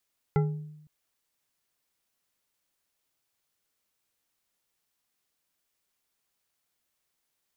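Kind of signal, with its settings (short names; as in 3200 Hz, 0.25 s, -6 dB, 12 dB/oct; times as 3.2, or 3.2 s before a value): glass hit bar, length 0.51 s, lowest mode 152 Hz, decay 0.89 s, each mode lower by 5 dB, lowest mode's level -19.5 dB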